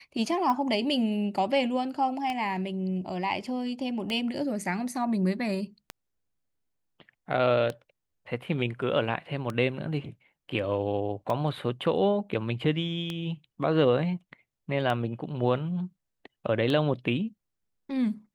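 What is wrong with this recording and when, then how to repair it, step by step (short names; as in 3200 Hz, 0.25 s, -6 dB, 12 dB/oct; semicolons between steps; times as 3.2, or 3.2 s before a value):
tick 33 1/3 rpm -18 dBFS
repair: de-click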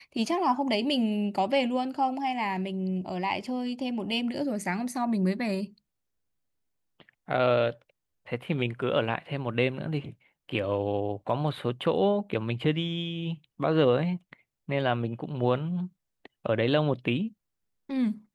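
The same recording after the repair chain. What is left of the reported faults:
none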